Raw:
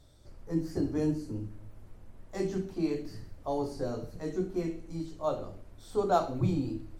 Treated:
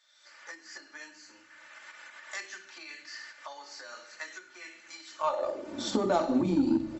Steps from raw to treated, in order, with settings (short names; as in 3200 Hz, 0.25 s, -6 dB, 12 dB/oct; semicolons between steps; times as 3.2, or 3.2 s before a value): recorder AGC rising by 41 dB/s; low shelf 240 Hz -6 dB; comb 3.4 ms, depth 68%; in parallel at -2.5 dB: limiter -23.5 dBFS, peak gain reduction 10.5 dB; on the sum: high-pass sweep 1700 Hz -> 200 Hz, 5.09–5.83; added harmonics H 7 -28 dB, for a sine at -9.5 dBFS; brick-wall FIR low-pass 7800 Hz; on a send: frequency-shifting echo 0.102 s, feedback 44%, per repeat -99 Hz, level -22 dB; on the sum: gain -4 dB